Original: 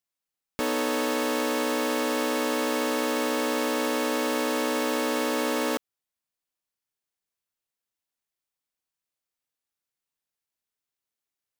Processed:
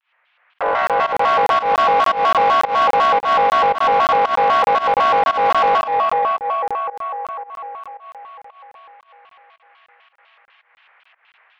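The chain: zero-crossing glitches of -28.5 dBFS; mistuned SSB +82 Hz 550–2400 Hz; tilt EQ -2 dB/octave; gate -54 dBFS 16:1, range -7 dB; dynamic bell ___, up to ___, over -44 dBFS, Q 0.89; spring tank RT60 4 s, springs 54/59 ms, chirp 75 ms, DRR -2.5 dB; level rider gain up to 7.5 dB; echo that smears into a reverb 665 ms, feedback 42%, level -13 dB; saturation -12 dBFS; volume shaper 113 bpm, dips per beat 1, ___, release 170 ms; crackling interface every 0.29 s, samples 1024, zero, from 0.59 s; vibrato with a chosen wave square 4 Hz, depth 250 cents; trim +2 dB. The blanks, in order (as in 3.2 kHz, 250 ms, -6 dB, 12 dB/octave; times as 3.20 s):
810 Hz, +7 dB, -18 dB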